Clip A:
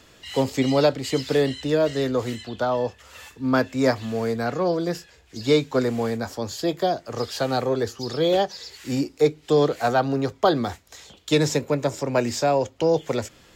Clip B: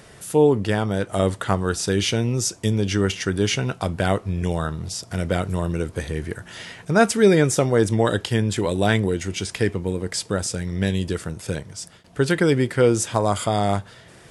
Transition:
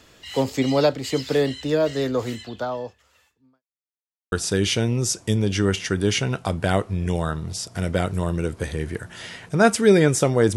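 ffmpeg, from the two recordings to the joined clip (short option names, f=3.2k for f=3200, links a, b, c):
-filter_complex "[0:a]apad=whole_dur=10.56,atrim=end=10.56,asplit=2[a][b];[a]atrim=end=3.63,asetpts=PTS-STARTPTS,afade=t=out:st=2.42:d=1.21:c=qua[c];[b]atrim=start=3.63:end=4.32,asetpts=PTS-STARTPTS,volume=0[d];[1:a]atrim=start=1.68:end=7.92,asetpts=PTS-STARTPTS,afade=t=in:d=0.004:c=hsin[e];[c][d][e]concat=n=3:v=0:a=1"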